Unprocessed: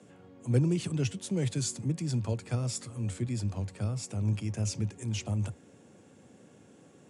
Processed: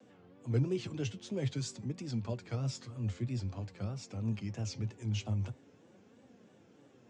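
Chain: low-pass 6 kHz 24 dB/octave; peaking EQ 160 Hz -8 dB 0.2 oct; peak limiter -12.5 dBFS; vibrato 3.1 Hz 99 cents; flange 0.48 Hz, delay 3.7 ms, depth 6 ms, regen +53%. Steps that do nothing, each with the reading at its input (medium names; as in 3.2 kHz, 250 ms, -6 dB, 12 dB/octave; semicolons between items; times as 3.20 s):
peak limiter -12.5 dBFS: peak at its input -16.0 dBFS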